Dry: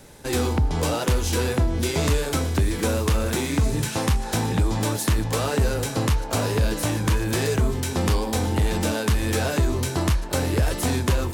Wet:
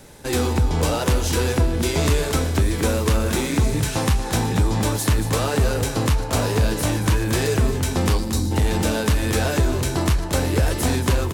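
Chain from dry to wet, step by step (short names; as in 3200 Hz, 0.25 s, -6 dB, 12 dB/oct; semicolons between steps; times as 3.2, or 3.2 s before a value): spectral gain 8.18–8.52, 380–3700 Hz -13 dB; echo 0.229 s -10.5 dB; gain +2 dB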